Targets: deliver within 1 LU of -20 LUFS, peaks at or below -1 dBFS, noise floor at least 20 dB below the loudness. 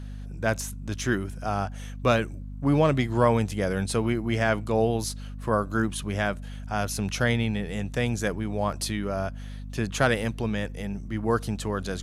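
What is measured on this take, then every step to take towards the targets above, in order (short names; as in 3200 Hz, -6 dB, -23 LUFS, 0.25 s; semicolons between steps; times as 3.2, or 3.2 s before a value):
hum 50 Hz; harmonics up to 250 Hz; hum level -34 dBFS; loudness -27.0 LUFS; peak -6.5 dBFS; loudness target -20.0 LUFS
-> de-hum 50 Hz, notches 5; gain +7 dB; limiter -1 dBFS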